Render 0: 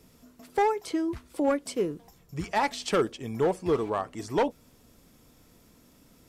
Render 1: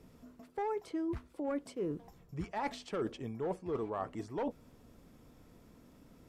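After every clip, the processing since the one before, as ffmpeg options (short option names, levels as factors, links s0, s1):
-af "highshelf=f=2700:g=-12,areverse,acompressor=threshold=0.02:ratio=6,areverse"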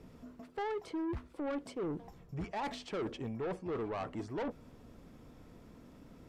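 -af "highshelf=f=6900:g=-9.5,asoftclip=type=tanh:threshold=0.0141,volume=1.58"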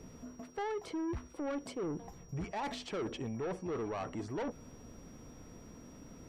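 -af "alimiter=level_in=4.22:limit=0.0631:level=0:latency=1:release=64,volume=0.237,aeval=exprs='val(0)+0.000501*sin(2*PI*5700*n/s)':c=same,volume=1.41"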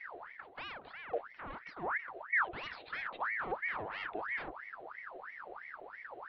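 -af "lowshelf=f=220:t=q:w=3:g=10,aresample=8000,aresample=44100,aeval=exprs='val(0)*sin(2*PI*1300*n/s+1300*0.6/3*sin(2*PI*3*n/s))':c=same,volume=0.668"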